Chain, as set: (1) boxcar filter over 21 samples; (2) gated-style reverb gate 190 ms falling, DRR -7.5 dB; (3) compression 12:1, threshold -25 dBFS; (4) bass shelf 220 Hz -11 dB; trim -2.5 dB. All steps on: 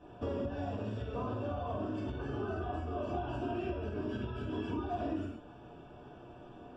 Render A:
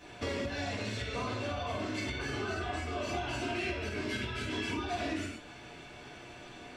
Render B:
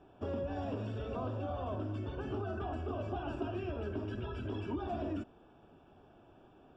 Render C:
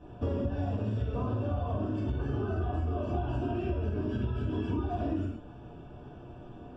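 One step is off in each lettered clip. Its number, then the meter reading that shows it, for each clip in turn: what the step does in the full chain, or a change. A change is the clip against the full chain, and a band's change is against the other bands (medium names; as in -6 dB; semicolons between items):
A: 1, 4 kHz band +14.5 dB; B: 2, momentary loudness spread change -13 LU; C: 4, 125 Hz band +8.0 dB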